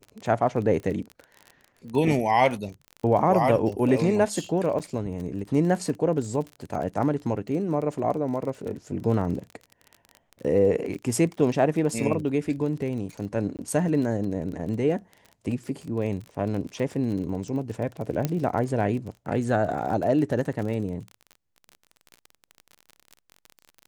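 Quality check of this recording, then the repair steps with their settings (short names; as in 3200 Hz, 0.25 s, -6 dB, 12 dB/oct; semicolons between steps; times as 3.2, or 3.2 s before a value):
crackle 29/s -32 dBFS
4.79–4.8 gap 7.4 ms
13.57–13.59 gap 18 ms
18.25 pop -11 dBFS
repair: de-click; interpolate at 4.79, 7.4 ms; interpolate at 13.57, 18 ms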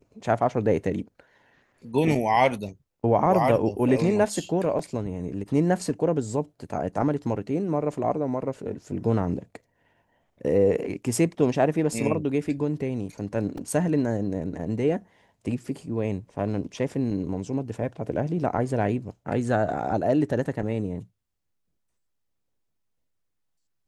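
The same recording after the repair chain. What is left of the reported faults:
none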